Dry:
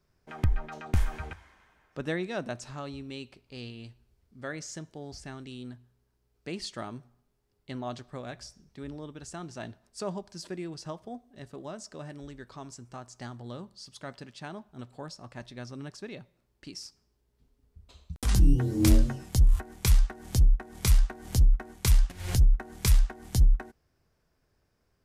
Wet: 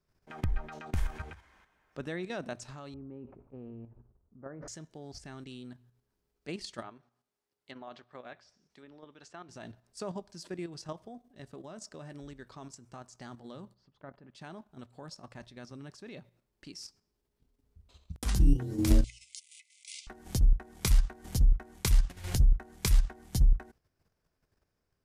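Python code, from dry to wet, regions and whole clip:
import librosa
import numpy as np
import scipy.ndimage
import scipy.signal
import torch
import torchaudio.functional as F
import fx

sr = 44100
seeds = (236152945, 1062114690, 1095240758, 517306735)

y = fx.chain(x, sr, fx.lowpass(hz=1200.0, slope=24),
    fx.sustainer(db_per_s=65.0), at=(2.94, 4.68))
y = fx.chain(y, sr, fx.highpass(hz=630.0, slope=6),
    fx.env_lowpass_down(base_hz=2900.0, full_db=-42.0), at=(6.82, 9.49))
y = fx.chain(y, sr, fx.lowpass(hz=1400.0, slope=12),
    fx.level_steps(step_db=10), at=(13.74, 14.35))
y = fx.chain(y, sr, fx.brickwall_bandpass(low_hz=2000.0, high_hz=10000.0),
    fx.over_compress(threshold_db=-41.0, ratio=-1.0), at=(19.04, 20.07))
y = fx.hum_notches(y, sr, base_hz=60, count=2)
y = fx.level_steps(y, sr, step_db=9)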